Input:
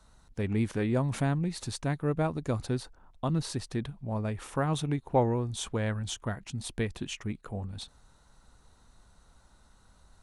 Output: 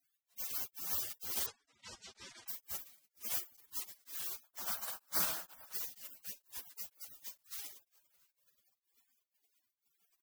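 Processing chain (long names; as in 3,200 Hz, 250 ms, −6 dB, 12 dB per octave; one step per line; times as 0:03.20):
compressing power law on the bin magnitudes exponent 0.15
single-tap delay 673 ms −23 dB
flanger 0.9 Hz, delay 10 ms, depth 2.1 ms, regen −64%
0:04.43–0:05.74: flat-topped bell 960 Hz −9.5 dB
gate on every frequency bin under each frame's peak −20 dB weak
0:01.46–0:02.48: Bessel low-pass filter 5,100 Hz, order 8
tremolo along a rectified sine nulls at 2.1 Hz
level +17 dB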